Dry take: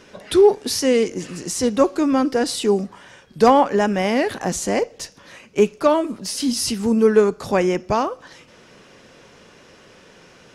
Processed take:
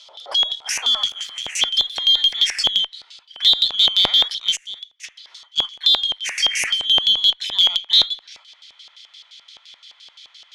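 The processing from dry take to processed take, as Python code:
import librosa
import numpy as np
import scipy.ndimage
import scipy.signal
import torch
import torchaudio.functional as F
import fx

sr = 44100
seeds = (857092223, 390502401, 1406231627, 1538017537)

p1 = fx.band_shuffle(x, sr, order='2413')
p2 = fx.tone_stack(p1, sr, knobs='6-0-2', at=(4.55, 5.03), fade=0.02)
p3 = fx.over_compress(p2, sr, threshold_db=-18.0, ratio=-0.5)
p4 = p2 + F.gain(torch.from_numpy(p3), 2.0).numpy()
p5 = fx.filter_sweep_highpass(p4, sr, from_hz=570.0, to_hz=2000.0, start_s=0.47, end_s=1.34, q=2.5)
p6 = fx.sample_gate(p5, sr, floor_db=-30.0, at=(0.73, 2.51))
p7 = fx.filter_lfo_bandpass(p6, sr, shape='square', hz=5.8, low_hz=770.0, high_hz=4800.0, q=1.7)
p8 = fx.cheby_harmonics(p7, sr, harmonics=(6, 8), levels_db=(-42, -36), full_scale_db=0.5)
y = F.gain(torch.from_numpy(p8), -1.5).numpy()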